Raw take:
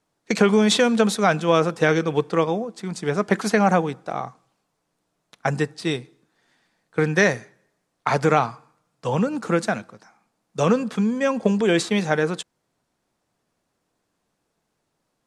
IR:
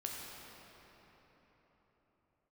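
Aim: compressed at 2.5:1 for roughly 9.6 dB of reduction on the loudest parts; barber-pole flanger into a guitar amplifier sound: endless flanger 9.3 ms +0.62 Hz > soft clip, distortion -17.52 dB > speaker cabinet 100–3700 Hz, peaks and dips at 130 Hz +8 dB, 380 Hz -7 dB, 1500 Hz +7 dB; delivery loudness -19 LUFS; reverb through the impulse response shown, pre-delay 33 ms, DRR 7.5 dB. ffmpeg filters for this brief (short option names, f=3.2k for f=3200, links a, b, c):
-filter_complex "[0:a]acompressor=threshold=-28dB:ratio=2.5,asplit=2[a][b];[1:a]atrim=start_sample=2205,adelay=33[c];[b][c]afir=irnorm=-1:irlink=0,volume=-8dB[d];[a][d]amix=inputs=2:normalize=0,asplit=2[e][f];[f]adelay=9.3,afreqshift=0.62[g];[e][g]amix=inputs=2:normalize=1,asoftclip=threshold=-23dB,highpass=100,equalizer=f=130:t=q:w=4:g=8,equalizer=f=380:t=q:w=4:g=-7,equalizer=f=1.5k:t=q:w=4:g=7,lowpass=f=3.7k:w=0.5412,lowpass=f=3.7k:w=1.3066,volume=15dB"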